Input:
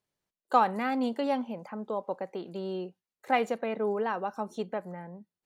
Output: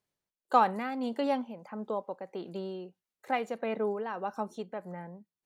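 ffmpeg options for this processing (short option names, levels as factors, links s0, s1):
-af "tremolo=f=1.6:d=0.51"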